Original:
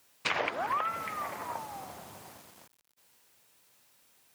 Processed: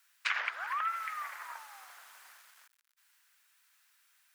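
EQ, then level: resonant high-pass 1.5 kHz, resonance Q 2.4; -5.0 dB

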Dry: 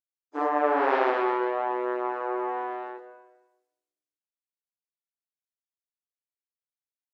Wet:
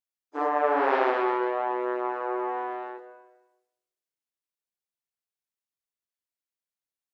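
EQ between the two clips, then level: hum notches 60/120/180/240/300 Hz; 0.0 dB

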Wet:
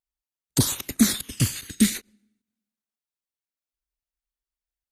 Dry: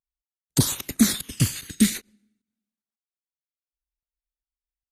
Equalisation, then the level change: peaking EQ 160 Hz -5 dB 0.28 oct; 0.0 dB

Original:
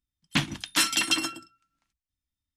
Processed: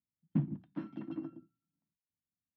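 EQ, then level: ladder band-pass 200 Hz, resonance 40%; distance through air 140 m; +7.5 dB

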